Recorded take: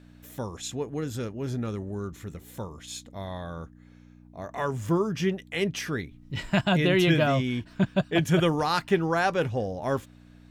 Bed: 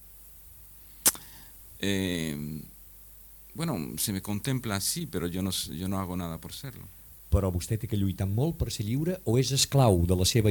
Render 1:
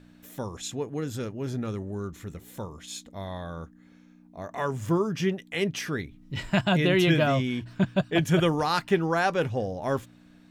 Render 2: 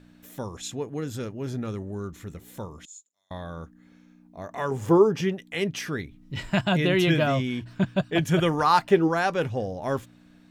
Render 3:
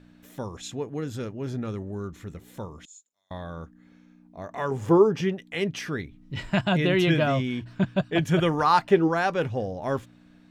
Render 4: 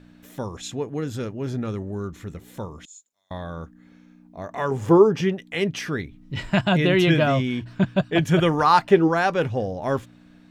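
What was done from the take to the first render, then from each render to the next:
de-hum 60 Hz, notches 2
2.85–3.31 s: band-pass filter 7.1 kHz, Q 12; 4.71–5.21 s: small resonant body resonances 450/800 Hz, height 13 dB, ringing for 20 ms; 8.46–9.07 s: peaking EQ 2.3 kHz -> 330 Hz +11.5 dB 0.59 oct
treble shelf 7.5 kHz -8.5 dB
trim +3.5 dB

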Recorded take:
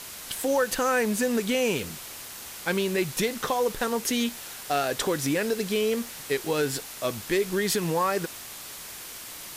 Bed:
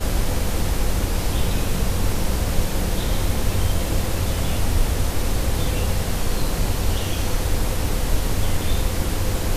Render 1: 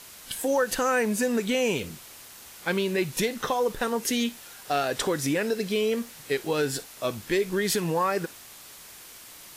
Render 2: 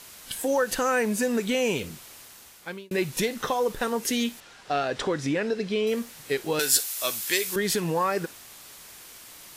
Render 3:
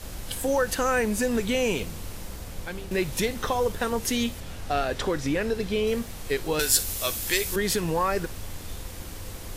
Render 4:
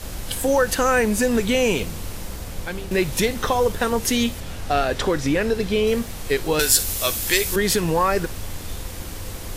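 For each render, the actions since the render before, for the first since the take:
noise print and reduce 6 dB
1.98–2.91 s: fade out equal-power; 4.40–5.87 s: distance through air 97 m; 6.59–7.56 s: tilt EQ +4.5 dB/octave
add bed -16.5 dB
trim +5.5 dB; peak limiter -3 dBFS, peak gain reduction 2 dB

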